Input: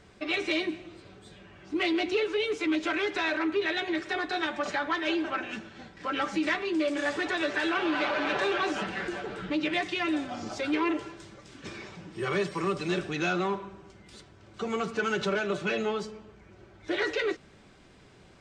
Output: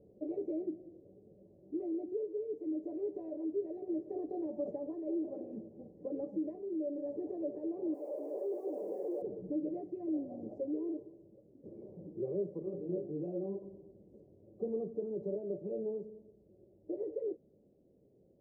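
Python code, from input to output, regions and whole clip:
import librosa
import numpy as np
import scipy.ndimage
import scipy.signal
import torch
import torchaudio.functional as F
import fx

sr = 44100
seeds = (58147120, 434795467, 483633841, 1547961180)

y = fx.chain(x, sr, fx.clip_1bit(),
    fx.highpass(hz=350.0, slope=24),
    fx.high_shelf(hz=5000.0, db=4.0), at=(7.94, 9.22))
y = fx.chain(y, sr, fx.doubler(ms=35.0, db=-11.0),
    fx.detune_double(cents=20), at=(12.59, 13.62))
y = scipy.signal.sosfilt(scipy.signal.ellip(4, 1.0, 60, 540.0, 'lowpass', fs=sr, output='sos'), y)
y = fx.tilt_eq(y, sr, slope=4.0)
y = fx.rider(y, sr, range_db=10, speed_s=0.5)
y = F.gain(torch.from_numpy(y), 1.0).numpy()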